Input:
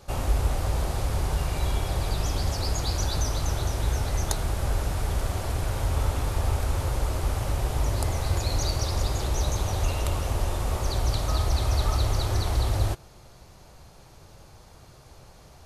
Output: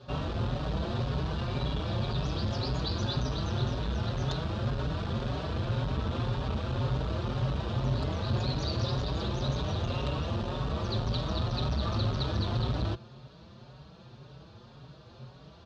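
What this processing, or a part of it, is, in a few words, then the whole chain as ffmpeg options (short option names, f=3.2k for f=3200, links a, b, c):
barber-pole flanger into a guitar amplifier: -filter_complex "[0:a]asplit=2[a][b];[b]adelay=5.1,afreqshift=1.9[c];[a][c]amix=inputs=2:normalize=1,asoftclip=type=tanh:threshold=-23.5dB,highpass=81,equalizer=f=84:t=q:w=4:g=-5,equalizer=f=130:t=q:w=4:g=8,equalizer=f=220:t=q:w=4:g=7,equalizer=f=800:t=q:w=4:g=-6,equalizer=f=2.1k:t=q:w=4:g=-9,equalizer=f=3.7k:t=q:w=4:g=4,lowpass=f=4.2k:w=0.5412,lowpass=f=4.2k:w=1.3066,volume=3.5dB"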